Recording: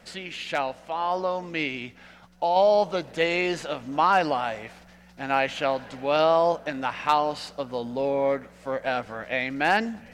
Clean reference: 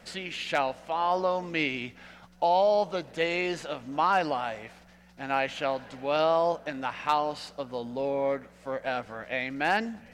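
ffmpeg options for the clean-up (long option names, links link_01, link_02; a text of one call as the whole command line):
ffmpeg -i in.wav -af "asetnsamples=nb_out_samples=441:pad=0,asendcmd='2.56 volume volume -4dB',volume=0dB" out.wav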